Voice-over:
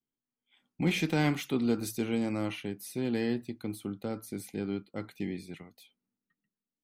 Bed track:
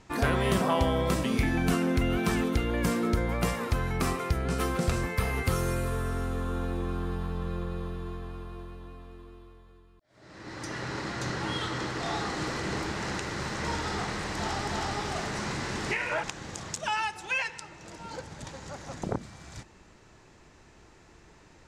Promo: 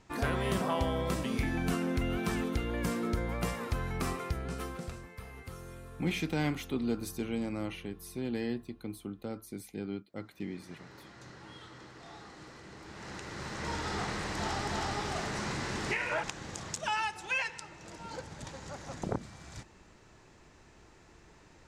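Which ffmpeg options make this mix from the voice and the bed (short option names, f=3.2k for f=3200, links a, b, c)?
-filter_complex "[0:a]adelay=5200,volume=-4dB[a];[1:a]volume=10dB,afade=t=out:st=4.18:d=0.85:silence=0.237137,afade=t=in:st=12.79:d=1.24:silence=0.16788[b];[a][b]amix=inputs=2:normalize=0"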